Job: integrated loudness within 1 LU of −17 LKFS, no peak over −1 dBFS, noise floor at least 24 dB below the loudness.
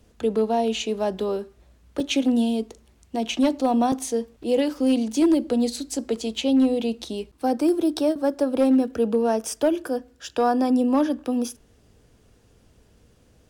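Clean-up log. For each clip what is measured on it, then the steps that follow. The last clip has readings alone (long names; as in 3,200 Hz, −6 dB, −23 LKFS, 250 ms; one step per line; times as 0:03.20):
share of clipped samples 0.5%; peaks flattened at −13.0 dBFS; number of dropouts 3; longest dropout 3.2 ms; integrated loudness −23.5 LKFS; sample peak −13.0 dBFS; target loudness −17.0 LKFS
→ clipped peaks rebuilt −13 dBFS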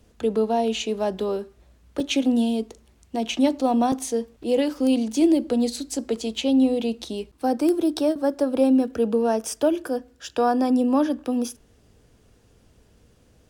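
share of clipped samples 0.0%; number of dropouts 3; longest dropout 3.2 ms
→ repair the gap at 0:02.00/0:03.92/0:04.43, 3.2 ms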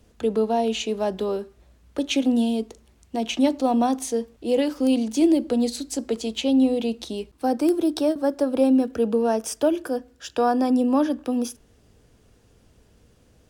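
number of dropouts 0; integrated loudness −23.5 LKFS; sample peak −8.0 dBFS; target loudness −17.0 LKFS
→ level +6.5 dB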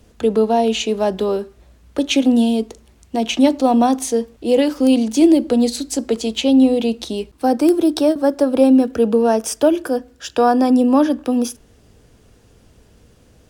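integrated loudness −17.0 LKFS; sample peak −1.5 dBFS; background noise floor −52 dBFS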